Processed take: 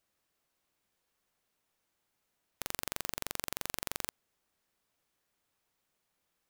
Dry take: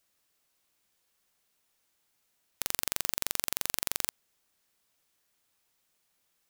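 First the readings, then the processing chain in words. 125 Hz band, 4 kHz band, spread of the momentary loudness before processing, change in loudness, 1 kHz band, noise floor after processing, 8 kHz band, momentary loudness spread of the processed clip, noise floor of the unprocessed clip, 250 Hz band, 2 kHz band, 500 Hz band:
0.0 dB, -6.0 dB, 4 LU, -7.0 dB, -1.5 dB, -82 dBFS, -7.5 dB, 4 LU, -76 dBFS, 0.0 dB, -3.5 dB, -0.5 dB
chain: high shelf 2300 Hz -8 dB

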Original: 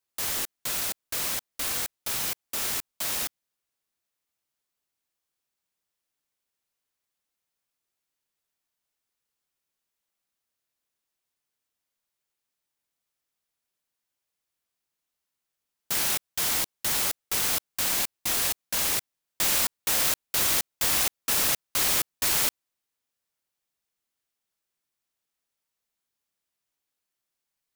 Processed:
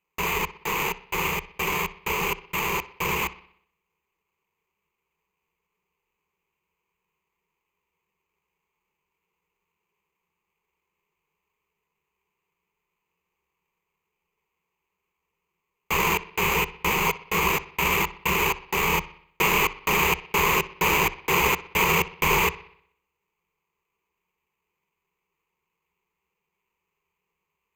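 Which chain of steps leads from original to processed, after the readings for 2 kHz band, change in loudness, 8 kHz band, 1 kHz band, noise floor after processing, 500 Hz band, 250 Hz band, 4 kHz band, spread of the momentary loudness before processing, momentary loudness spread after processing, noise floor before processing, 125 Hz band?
+10.0 dB, +1.5 dB, -6.0 dB, +12.5 dB, -82 dBFS, +12.0 dB, +10.5 dB, -0.5 dB, 7 LU, 6 LU, -85 dBFS, +12.5 dB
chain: careless resampling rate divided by 8×, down none, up hold; ripple EQ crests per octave 0.78, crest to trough 16 dB; analogue delay 62 ms, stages 2048, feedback 51%, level -17.5 dB

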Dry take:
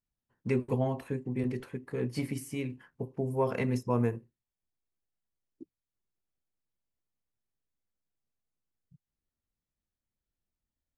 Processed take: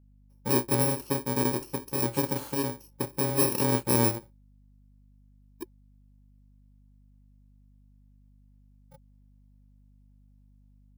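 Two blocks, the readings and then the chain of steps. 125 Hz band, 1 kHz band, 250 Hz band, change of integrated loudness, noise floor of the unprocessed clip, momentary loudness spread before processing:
+2.0 dB, +6.5 dB, +3.0 dB, +6.0 dB, under -85 dBFS, 11 LU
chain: FFT order left unsorted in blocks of 64 samples; AGC gain up to 4 dB; small resonant body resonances 360/540/860 Hz, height 12 dB, ringing for 40 ms; hum 50 Hz, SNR 26 dB; gain -1.5 dB

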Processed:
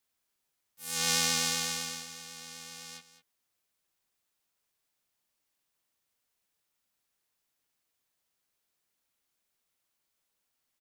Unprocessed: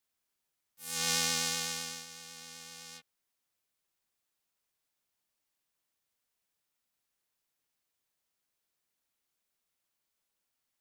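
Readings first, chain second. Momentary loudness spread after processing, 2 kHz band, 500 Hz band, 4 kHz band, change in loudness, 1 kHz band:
19 LU, +2.5 dB, +2.0 dB, +2.5 dB, +2.5 dB, +3.0 dB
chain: echo 0.205 s -14 dB; gain +2.5 dB

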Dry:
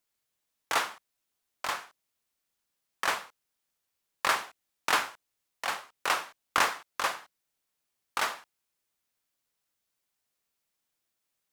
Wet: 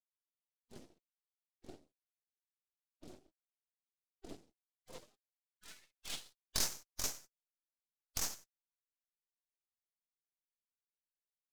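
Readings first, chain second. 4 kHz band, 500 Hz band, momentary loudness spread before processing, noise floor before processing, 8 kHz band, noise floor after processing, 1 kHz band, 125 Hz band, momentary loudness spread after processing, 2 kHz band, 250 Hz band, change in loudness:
-10.0 dB, -16.5 dB, 10 LU, -83 dBFS, -3.0 dB, under -85 dBFS, -26.5 dB, 0.0 dB, 23 LU, -23.5 dB, -7.0 dB, -9.0 dB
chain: spectral gate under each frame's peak -20 dB weak; band-pass sweep 340 Hz -> 6100 Hz, 4.62–6.69; half-wave rectifier; gain +12.5 dB

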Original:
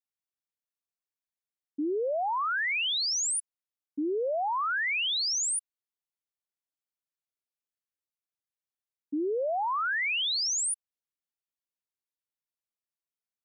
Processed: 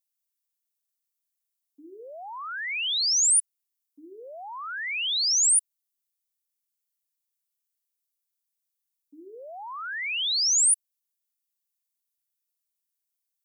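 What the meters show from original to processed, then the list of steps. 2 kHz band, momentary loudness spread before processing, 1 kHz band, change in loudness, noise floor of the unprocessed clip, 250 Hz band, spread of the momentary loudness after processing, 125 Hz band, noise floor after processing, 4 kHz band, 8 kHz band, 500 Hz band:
-2.5 dB, 8 LU, -8.0 dB, +6.0 dB, under -85 dBFS, under -15 dB, 19 LU, n/a, -84 dBFS, +3.5 dB, +8.5 dB, -14.0 dB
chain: pre-emphasis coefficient 0.97; notches 60/120/180/240/300/360/420 Hz; gain +8.5 dB

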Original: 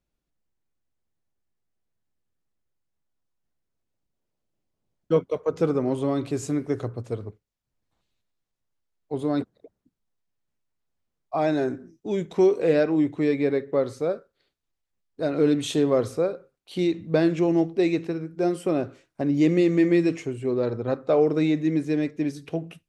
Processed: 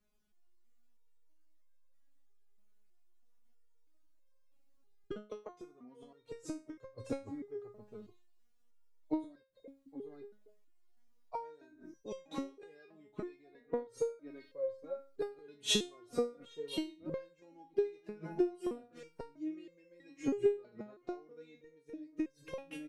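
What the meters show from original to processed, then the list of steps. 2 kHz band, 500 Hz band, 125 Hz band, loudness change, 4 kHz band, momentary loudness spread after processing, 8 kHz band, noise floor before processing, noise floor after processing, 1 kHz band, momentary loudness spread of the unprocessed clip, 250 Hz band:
-16.0 dB, -15.5 dB, -24.0 dB, -15.5 dB, -2.0 dB, 22 LU, -3.5 dB, -82 dBFS, -68 dBFS, -15.5 dB, 12 LU, -18.0 dB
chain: outdoor echo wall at 140 m, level -19 dB; flipped gate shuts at -19 dBFS, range -31 dB; stepped resonator 3.1 Hz 210–530 Hz; gain +15.5 dB

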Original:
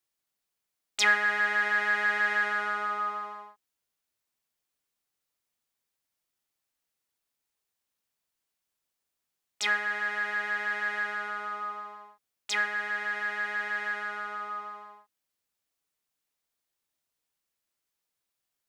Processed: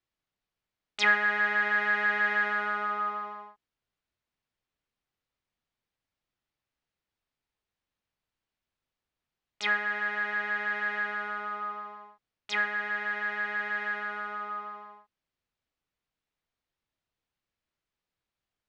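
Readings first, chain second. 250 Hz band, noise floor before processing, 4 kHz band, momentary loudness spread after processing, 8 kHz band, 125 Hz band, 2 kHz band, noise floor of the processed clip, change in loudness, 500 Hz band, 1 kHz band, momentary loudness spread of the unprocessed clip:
+4.0 dB, -85 dBFS, -3.0 dB, 13 LU, under -10 dB, n/a, 0.0 dB, under -85 dBFS, 0.0 dB, +1.0 dB, 0.0 dB, 14 LU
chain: LPF 3700 Hz 12 dB/oct; low shelf 160 Hz +11 dB

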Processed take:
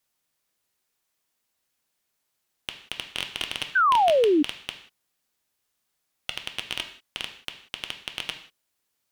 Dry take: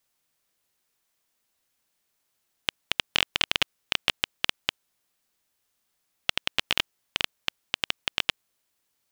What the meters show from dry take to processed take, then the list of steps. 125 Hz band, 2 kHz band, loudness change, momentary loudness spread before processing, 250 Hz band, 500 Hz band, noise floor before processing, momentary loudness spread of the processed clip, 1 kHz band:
-4.0 dB, -1.0 dB, +2.0 dB, 9 LU, +15.0 dB, +17.0 dB, -76 dBFS, 20 LU, +13.0 dB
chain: non-linear reverb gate 0.21 s falling, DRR 10.5 dB; tube stage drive 14 dB, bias 0.45; painted sound fall, 3.75–4.43, 280–1600 Hz -19 dBFS

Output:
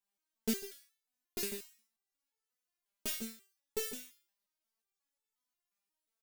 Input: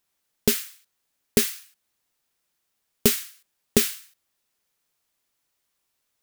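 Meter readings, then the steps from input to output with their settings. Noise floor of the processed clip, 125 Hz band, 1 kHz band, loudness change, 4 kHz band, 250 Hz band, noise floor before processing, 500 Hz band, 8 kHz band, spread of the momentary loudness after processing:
under -85 dBFS, -21.0 dB, -14.0 dB, -16.0 dB, -15.0 dB, -13.5 dB, -77 dBFS, -15.0 dB, -15.5 dB, 19 LU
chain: bell 880 Hz +3 dB 0.56 oct; echo 0.148 s -11.5 dB; stepped resonator 5.6 Hz 200–440 Hz; gain -1 dB

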